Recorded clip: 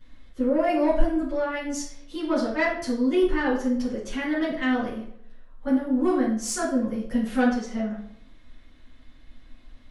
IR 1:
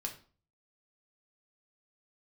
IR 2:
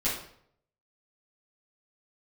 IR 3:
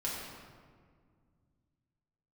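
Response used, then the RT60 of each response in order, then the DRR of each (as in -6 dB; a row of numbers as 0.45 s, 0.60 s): 2; 0.40 s, 0.65 s, 1.9 s; 1.5 dB, -10.5 dB, -7.0 dB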